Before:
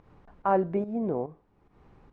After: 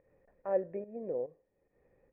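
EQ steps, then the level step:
formant resonators in series e
+2.5 dB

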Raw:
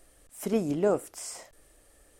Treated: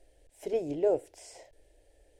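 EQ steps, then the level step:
high-shelf EQ 4,400 Hz −10.5 dB
high-shelf EQ 10,000 Hz −12 dB
phaser with its sweep stopped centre 500 Hz, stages 4
0.0 dB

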